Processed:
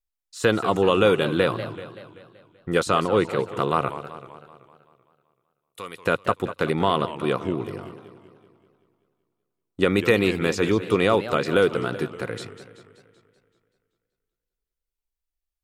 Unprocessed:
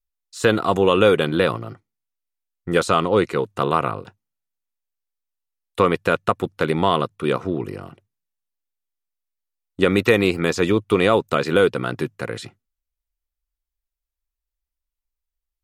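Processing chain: 3.89–6.06 pre-emphasis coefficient 0.9; warbling echo 0.191 s, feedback 56%, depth 202 cents, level -13 dB; gain -3 dB

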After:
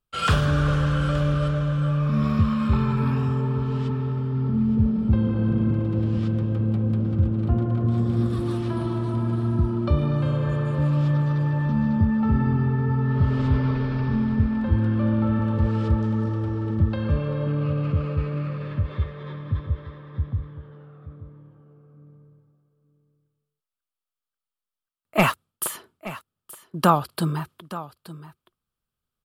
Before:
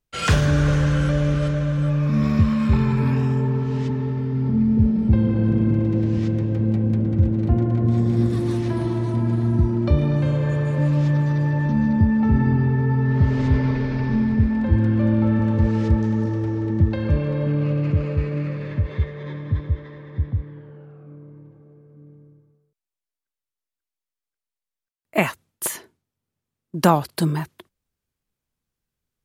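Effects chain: thirty-one-band EQ 315 Hz -3 dB, 1250 Hz +10 dB, 2000 Hz -6 dB, 3150 Hz +4 dB, 6300 Hz -8 dB; 25.19–25.64 sample leveller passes 2; on a send: echo 0.874 s -15.5 dB; on the sum: gain -3 dB

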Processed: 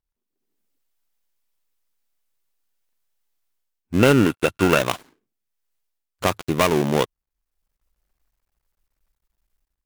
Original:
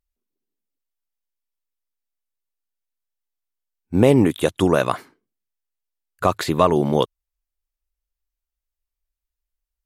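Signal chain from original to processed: switching dead time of 0.27 ms; AGC gain up to 13 dB; 3.99–4.79 small resonant body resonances 1400/2700 Hz, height 13 dB, ringing for 25 ms; gain -2.5 dB

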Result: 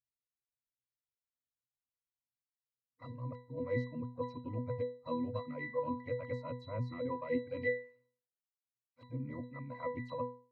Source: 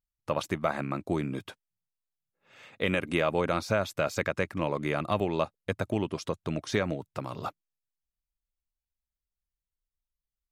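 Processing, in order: whole clip reversed; harmoniser +7 st -13 dB; reverb removal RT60 1.5 s; octave resonator B, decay 0.39 s; gain +9.5 dB

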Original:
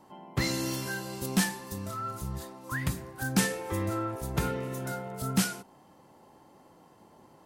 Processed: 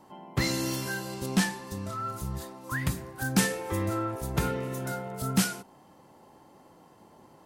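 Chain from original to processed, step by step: 1.14–2 high shelf 11000 Hz -12 dB; gain +1.5 dB

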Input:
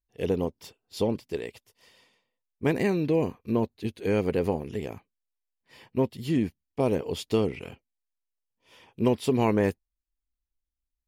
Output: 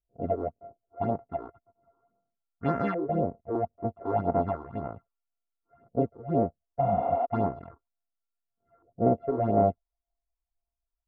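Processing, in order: sample sorter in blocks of 64 samples; low-pass opened by the level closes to 730 Hz, open at -24 dBFS; high shelf 5700 Hz -11.5 dB; LFO low-pass saw up 0.34 Hz 510–1600 Hz; phaser stages 6, 1.9 Hz, lowest notch 160–3900 Hz; spectral repair 6.84–7.23, 220–5300 Hz before; gain -2.5 dB

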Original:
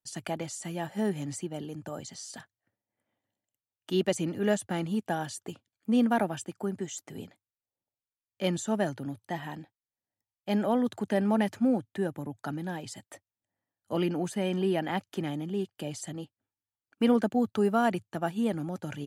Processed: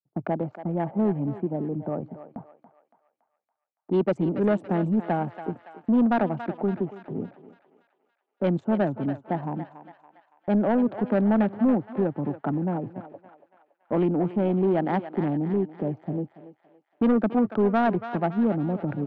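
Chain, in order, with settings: Wiener smoothing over 25 samples; LPF 1400 Hz 12 dB/oct; low-pass opened by the level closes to 830 Hz, open at -24 dBFS; HPF 130 Hz 24 dB/oct; gate -54 dBFS, range -21 dB; in parallel at +0.5 dB: compressor, threshold -37 dBFS, peak gain reduction 17 dB; on the sum: soft clip -20.5 dBFS, distortion -14 dB; on a send: thinning echo 0.282 s, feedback 58%, high-pass 780 Hz, level -8.5 dB; on the sum: gain +5.5 dB

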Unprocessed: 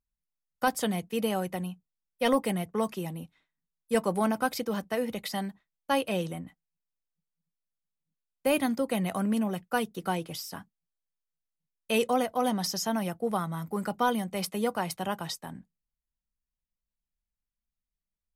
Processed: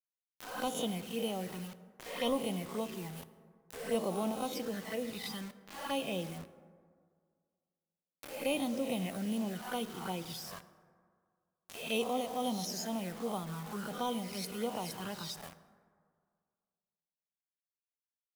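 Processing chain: spectral swells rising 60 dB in 0.58 s; dynamic EQ 3600 Hz, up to +3 dB, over -50 dBFS, Q 1.7; envelope flanger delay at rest 4.3 ms, full sweep at -23.5 dBFS; bit-crush 7-bit; upward compressor, threshold -32 dBFS; plate-style reverb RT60 2 s, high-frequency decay 0.4×, DRR 12.5 dB; gain -7.5 dB

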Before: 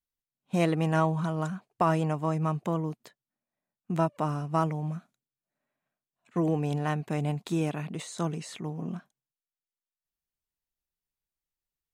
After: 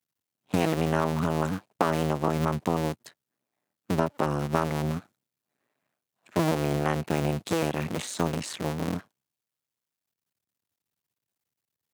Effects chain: cycle switcher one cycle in 2, muted; compressor, threshold -29 dBFS, peak gain reduction 8 dB; HPF 100 Hz 24 dB/oct; gain +9 dB

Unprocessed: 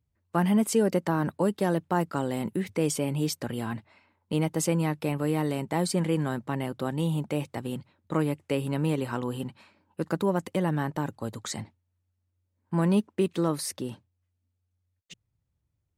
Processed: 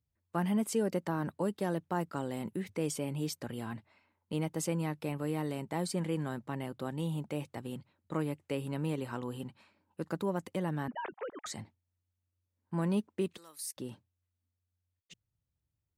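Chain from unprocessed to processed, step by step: 10.88–11.46 sine-wave speech; 13.37–13.77 differentiator; gain -7.5 dB

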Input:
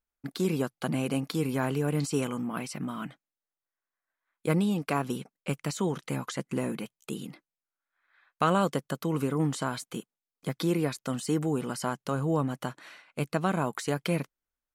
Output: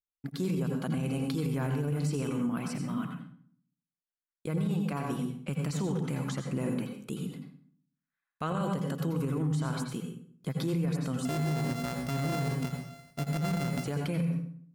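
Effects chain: 11.25–13.84 sample sorter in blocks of 64 samples; gate with hold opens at -51 dBFS; low shelf 160 Hz +10.5 dB; reverb RT60 0.55 s, pre-delay 81 ms, DRR 4 dB; limiter -18.5 dBFS, peak gain reduction 10 dB; gain -4.5 dB

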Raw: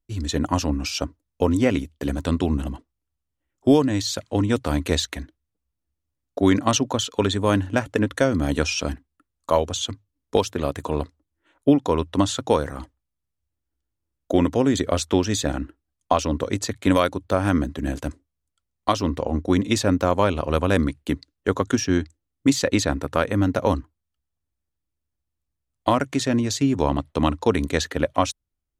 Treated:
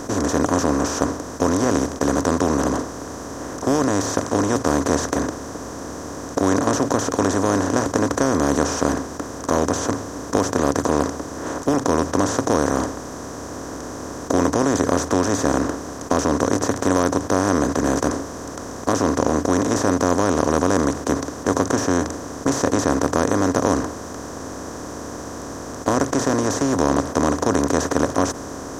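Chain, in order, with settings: per-bin compression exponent 0.2; band shelf 3100 Hz -13.5 dB 1.2 oct; 26.23–26.75 requantised 12-bit, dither none; gain -8 dB

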